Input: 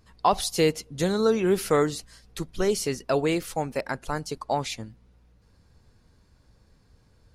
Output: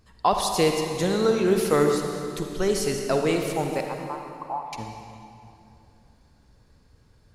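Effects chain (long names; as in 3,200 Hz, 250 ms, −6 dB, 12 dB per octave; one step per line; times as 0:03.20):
0:03.84–0:04.73: flat-topped band-pass 960 Hz, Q 2.5
convolution reverb RT60 2.8 s, pre-delay 45 ms, DRR 3 dB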